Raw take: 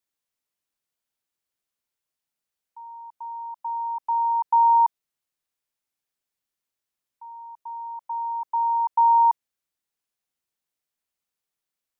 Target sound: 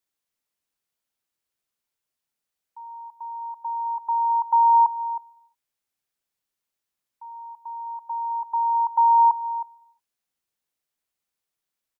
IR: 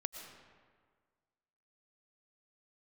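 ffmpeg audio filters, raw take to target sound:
-filter_complex "[0:a]asplit=2[link_01][link_02];[link_02]adelay=314.9,volume=-13dB,highshelf=frequency=4000:gain=-7.08[link_03];[link_01][link_03]amix=inputs=2:normalize=0,asplit=2[link_04][link_05];[1:a]atrim=start_sample=2205,afade=type=out:start_time=0.42:duration=0.01,atrim=end_sample=18963[link_06];[link_05][link_06]afir=irnorm=-1:irlink=0,volume=-16dB[link_07];[link_04][link_07]amix=inputs=2:normalize=0"

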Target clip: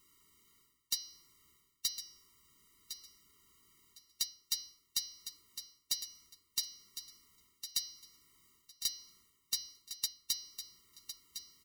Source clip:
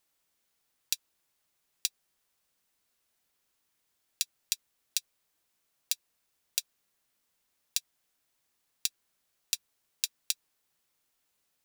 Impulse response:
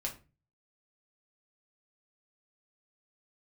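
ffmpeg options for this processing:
-filter_complex "[0:a]bandreject=frequency=242:width_type=h:width=4,bandreject=frequency=484:width_type=h:width=4,bandreject=frequency=726:width_type=h:width=4,bandreject=frequency=968:width_type=h:width=4,bandreject=frequency=1210:width_type=h:width=4,bandreject=frequency=1452:width_type=h:width=4,bandreject=frequency=1694:width_type=h:width=4,bandreject=frequency=1936:width_type=h:width=4,bandreject=frequency=2178:width_type=h:width=4,bandreject=frequency=2420:width_type=h:width=4,bandreject=frequency=2662:width_type=h:width=4,bandreject=frequency=2904:width_type=h:width=4,bandreject=frequency=3146:width_type=h:width=4,bandreject=frequency=3388:width_type=h:width=4,bandreject=frequency=3630:width_type=h:width=4,bandreject=frequency=3872:width_type=h:width=4,bandreject=frequency=4114:width_type=h:width=4,bandreject=frequency=4356:width_type=h:width=4,bandreject=frequency=4598:width_type=h:width=4,bandreject=frequency=4840:width_type=h:width=4,bandreject=frequency=5082:width_type=h:width=4,bandreject=frequency=5324:width_type=h:width=4,bandreject=frequency=5566:width_type=h:width=4,bandreject=frequency=5808:width_type=h:width=4,bandreject=frequency=6050:width_type=h:width=4,asplit=2[link_01][link_02];[link_02]aeval=exprs='(mod(5.62*val(0)+1,2)-1)/5.62':channel_layout=same,volume=-10dB[link_03];[link_01][link_03]amix=inputs=2:normalize=0,lowshelf=frequency=400:gain=3,areverse,acompressor=threshold=-42dB:ratio=5,areverse,equalizer=frequency=66:width_type=o:width=0.25:gain=8,aecho=1:1:1057|2114|3171:0.299|0.0627|0.0132,afftfilt=real='re*eq(mod(floor(b*sr/1024/460),2),0)':imag='im*eq(mod(floor(b*sr/1024/460),2),0)':win_size=1024:overlap=0.75,volume=10.5dB"

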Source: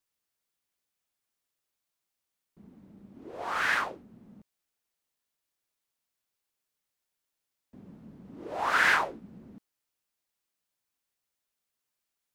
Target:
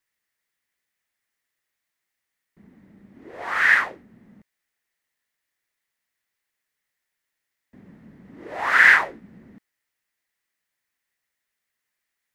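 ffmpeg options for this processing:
ffmpeg -i in.wav -af "equalizer=frequency=1900:width_type=o:width=0.52:gain=14,volume=1.5dB" out.wav

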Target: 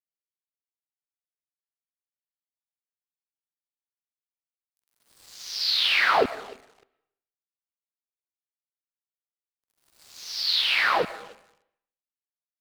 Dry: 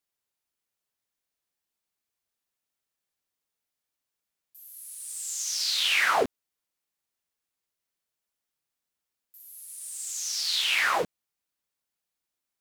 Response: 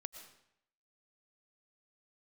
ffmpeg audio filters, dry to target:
-filter_complex "[0:a]highshelf=frequency=5700:width_type=q:width=3:gain=-9,aecho=1:1:302|604|906:0.112|0.0438|0.0171,aeval=exprs='sgn(val(0))*max(abs(val(0))-0.00596,0)':channel_layout=same,asplit=2[link_01][link_02];[1:a]atrim=start_sample=2205,lowpass=2300[link_03];[link_02][link_03]afir=irnorm=-1:irlink=0,volume=-0.5dB[link_04];[link_01][link_04]amix=inputs=2:normalize=0"

